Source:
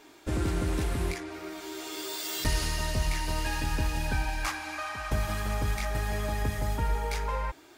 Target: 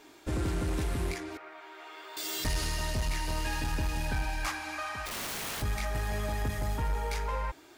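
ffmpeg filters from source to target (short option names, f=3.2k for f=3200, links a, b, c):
-filter_complex "[0:a]asettb=1/sr,asplit=3[a][b][c];[a]atrim=end=1.374[d];[b]atrim=start=1.37:end=2.17,asetpts=PTS-STARTPTS,afade=t=in:d=0.004:c=qsin,afade=t=out:st=0.796:d=0.004:c=qsin,acrossover=split=580 2600:gain=0.0708 1 0.0631[e][f][g];[e][f][g]amix=inputs=3:normalize=0[h];[c]atrim=start=2.166[i];[d][h]acrossfade=d=0.004:c1=hsin:c2=qsin[j];[j][i]acrossfade=d=0.004:c1=qsin:c2=hsin,asplit=3[k][l][m];[k]afade=t=out:st=5.05:d=0.02[n];[l]aeval=exprs='(mod(35.5*val(0)+1,2)-1)/35.5':c=same,afade=t=in:st=5.05:d=0.02,afade=t=out:st=5.61:d=0.02[o];[m]afade=t=in:st=5.61:d=0.02[p];[n][o][p]amix=inputs=3:normalize=0,aeval=exprs='0.168*(cos(1*acos(clip(val(0)/0.168,-1,1)))-cos(1*PI/2))+0.0266*(cos(5*acos(clip(val(0)/0.168,-1,1)))-cos(5*PI/2))+0.00376*(cos(7*acos(clip(val(0)/0.168,-1,1)))-cos(7*PI/2))':c=same,volume=-5dB"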